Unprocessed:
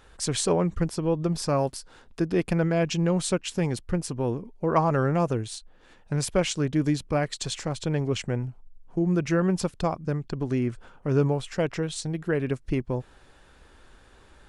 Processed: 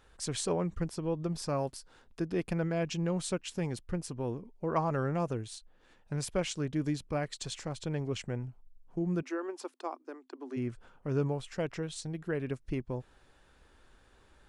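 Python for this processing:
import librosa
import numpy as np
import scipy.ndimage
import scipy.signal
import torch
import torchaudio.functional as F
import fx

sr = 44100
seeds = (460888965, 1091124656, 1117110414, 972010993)

y = fx.cheby_ripple_highpass(x, sr, hz=250.0, ripple_db=6, at=(9.21, 10.56), fade=0.02)
y = y * librosa.db_to_amplitude(-8.0)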